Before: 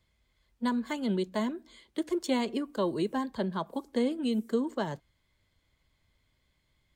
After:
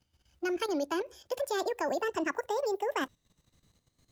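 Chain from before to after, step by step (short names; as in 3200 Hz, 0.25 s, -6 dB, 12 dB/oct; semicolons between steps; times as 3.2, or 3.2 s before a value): speed glide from 142% -> 196%; level quantiser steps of 12 dB; gain +6 dB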